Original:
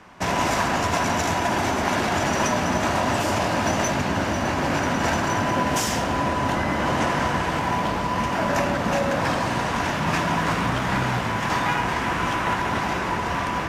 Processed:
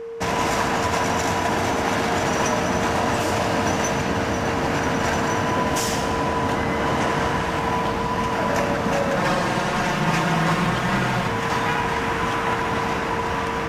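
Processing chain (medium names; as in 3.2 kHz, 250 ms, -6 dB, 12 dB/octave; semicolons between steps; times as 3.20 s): reverberation RT60 2.4 s, pre-delay 75 ms, DRR 9 dB; whistle 460 Hz -30 dBFS; 9.16–11.28 s: comb 5.6 ms, depth 65%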